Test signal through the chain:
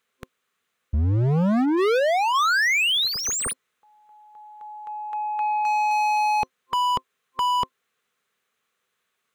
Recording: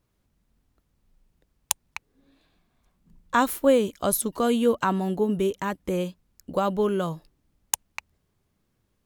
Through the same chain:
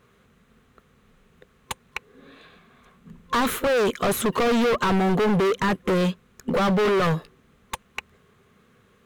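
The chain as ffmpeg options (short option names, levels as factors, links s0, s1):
-filter_complex "[0:a]asplit=2[s0][s1];[s1]highpass=f=720:p=1,volume=44.7,asoftclip=type=tanh:threshold=0.708[s2];[s0][s2]amix=inputs=2:normalize=0,lowpass=f=1000:p=1,volume=0.501,superequalizer=6b=0.355:8b=0.398:9b=0.355:14b=0.562,volume=8.91,asoftclip=hard,volume=0.112"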